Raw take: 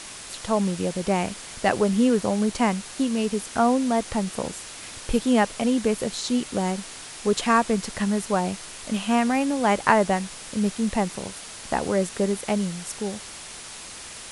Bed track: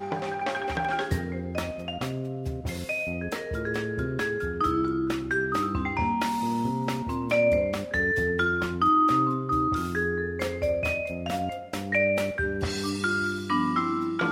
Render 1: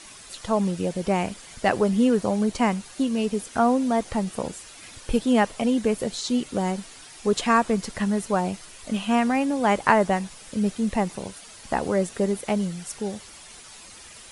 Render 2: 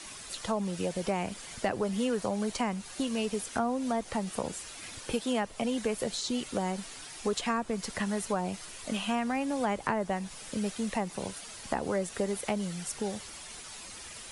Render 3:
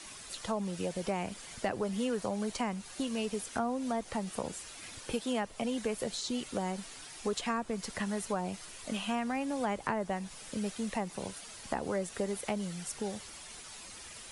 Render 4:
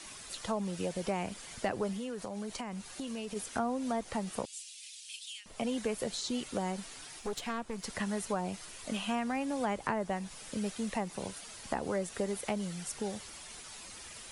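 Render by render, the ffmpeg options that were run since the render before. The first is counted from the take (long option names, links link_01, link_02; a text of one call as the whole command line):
ffmpeg -i in.wav -af "afftdn=noise_reduction=9:noise_floor=-40" out.wav
ffmpeg -i in.wav -filter_complex "[0:a]acrossover=split=110|530[link_01][link_02][link_03];[link_01]acompressor=threshold=-50dB:ratio=4[link_04];[link_02]acompressor=threshold=-34dB:ratio=4[link_05];[link_03]acompressor=threshold=-32dB:ratio=4[link_06];[link_04][link_05][link_06]amix=inputs=3:normalize=0" out.wav
ffmpeg -i in.wav -af "volume=-3dB" out.wav
ffmpeg -i in.wav -filter_complex "[0:a]asplit=3[link_01][link_02][link_03];[link_01]afade=type=out:start_time=1.92:duration=0.02[link_04];[link_02]acompressor=threshold=-36dB:ratio=4:attack=3.2:release=140:knee=1:detection=peak,afade=type=in:start_time=1.92:duration=0.02,afade=type=out:start_time=3.35:duration=0.02[link_05];[link_03]afade=type=in:start_time=3.35:duration=0.02[link_06];[link_04][link_05][link_06]amix=inputs=3:normalize=0,asettb=1/sr,asplit=3[link_07][link_08][link_09];[link_07]atrim=end=4.454[link_10];[link_08]atrim=start=4.45:end=5.46,asetpts=PTS-STARTPTS,afade=type=in:duration=0.004:curve=qsin,afade=type=out:start_time=1.006:duration=0.004:curve=qsin,asuperpass=centerf=5600:order=8:qfactor=0.71[link_11];[link_09]atrim=start=5.456[link_12];[link_10][link_11]acrossfade=duration=0.004:curve1=hsin:curve2=qsin[link_13];[link_13][link_12]acrossfade=duration=0.004:curve1=qsin:curve2=hsin,asettb=1/sr,asplit=3[link_14][link_15][link_16];[link_14]atrim=end=7.194[link_17];[link_15]atrim=start=7.19:end=7.84,asetpts=PTS-STARTPTS,afade=type=in:duration=0.004:curve=qsin,afade=type=out:start_time=0.646:duration=0.004:curve=qsin,aeval=exprs='(tanh(28.2*val(0)+0.6)-tanh(0.6))/28.2':channel_layout=same[link_18];[link_16]atrim=start=7.836[link_19];[link_17][link_18]acrossfade=duration=0.004:curve1=hsin:curve2=qsin[link_20];[link_20][link_19]acrossfade=duration=0.004:curve1=qsin:curve2=hsin" out.wav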